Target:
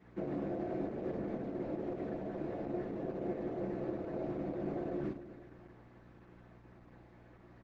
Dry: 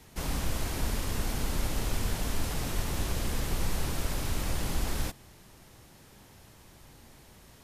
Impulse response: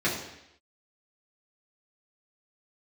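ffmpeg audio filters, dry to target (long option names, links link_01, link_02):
-filter_complex "[0:a]afwtdn=0.0251,highpass=380,acompressor=threshold=-58dB:ratio=1.5,aecho=1:1:213|426|639|852:0.141|0.072|0.0367|0.0187,alimiter=level_in=22dB:limit=-24dB:level=0:latency=1:release=91,volume=-22dB,aeval=exprs='val(0)+0.000282*(sin(2*PI*60*n/s)+sin(2*PI*2*60*n/s)/2+sin(2*PI*3*60*n/s)/3+sin(2*PI*4*60*n/s)/4+sin(2*PI*5*60*n/s)/5)':channel_layout=same,lowpass=1600[link_01];[1:a]atrim=start_sample=2205,atrim=end_sample=3528[link_02];[link_01][link_02]afir=irnorm=-1:irlink=0,volume=4.5dB" -ar 48000 -c:a libopus -b:a 12k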